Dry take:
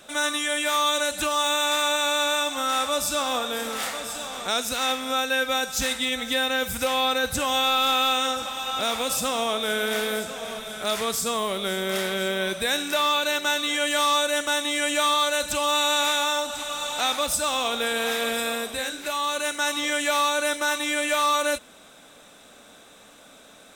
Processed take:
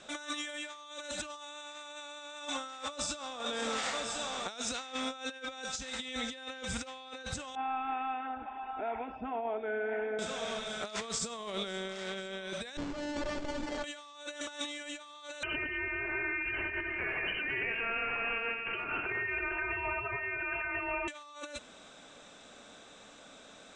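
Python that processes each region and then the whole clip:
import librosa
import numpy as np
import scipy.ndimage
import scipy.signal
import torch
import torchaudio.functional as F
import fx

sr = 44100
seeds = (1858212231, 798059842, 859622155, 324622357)

y = fx.chain(x, sr, fx.envelope_sharpen(power=1.5),
    fx.gaussian_blur(sigma=4.1),
    fx.fixed_phaser(hz=800.0, stages=8), at=(7.55, 10.19))
y = fx.chain(y, sr, fx.air_absorb(metres=60.0),
    fx.running_max(window=33), at=(12.77, 13.84))
y = fx.chain(y, sr, fx.freq_invert(carrier_hz=3000),
    fx.over_compress(threshold_db=-31.0, ratio=-1.0),
    fx.echo_alternate(ms=110, hz=1800.0, feedback_pct=52, wet_db=-4.5), at=(15.43, 21.08))
y = scipy.signal.sosfilt(scipy.signal.butter(8, 8000.0, 'lowpass', fs=sr, output='sos'), y)
y = fx.over_compress(y, sr, threshold_db=-30.0, ratio=-0.5)
y = F.gain(torch.from_numpy(y), -7.0).numpy()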